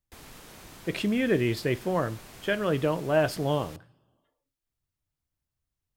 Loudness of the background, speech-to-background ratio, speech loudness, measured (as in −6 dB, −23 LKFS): −47.5 LKFS, 19.5 dB, −28.0 LKFS